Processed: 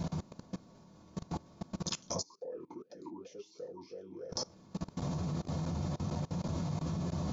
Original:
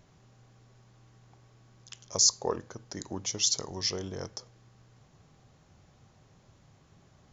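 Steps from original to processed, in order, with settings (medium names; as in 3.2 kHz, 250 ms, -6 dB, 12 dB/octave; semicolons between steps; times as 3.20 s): compression 2:1, threshold -53 dBFS, peak gain reduction 18.5 dB; reverberation RT60 0.25 s, pre-delay 3 ms, DRR -8 dB; level held to a coarse grid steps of 23 dB; 2.21–4.31 s: talking filter e-u 2 Hz -> 3.6 Hz; trim +11 dB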